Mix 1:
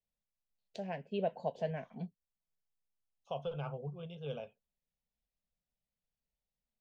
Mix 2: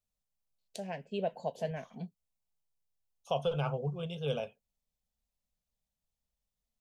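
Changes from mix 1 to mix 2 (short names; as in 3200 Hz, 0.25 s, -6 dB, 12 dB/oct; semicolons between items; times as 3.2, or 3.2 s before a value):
second voice +7.0 dB; master: remove air absorption 160 m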